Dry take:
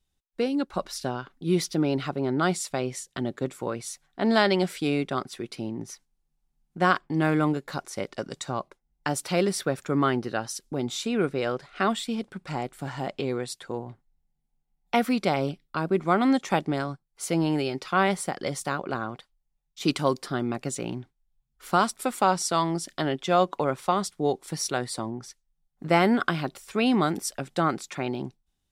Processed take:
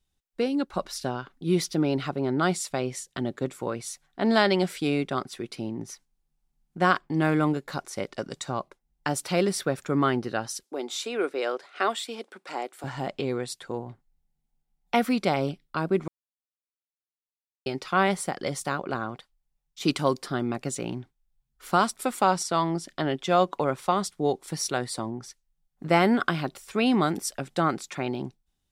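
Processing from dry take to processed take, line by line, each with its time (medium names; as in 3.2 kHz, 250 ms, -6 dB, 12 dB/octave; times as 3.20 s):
10.63–12.84 s: high-pass 330 Hz 24 dB/octave
16.08–17.66 s: mute
22.43–23.09 s: treble shelf 4.7 kHz -8 dB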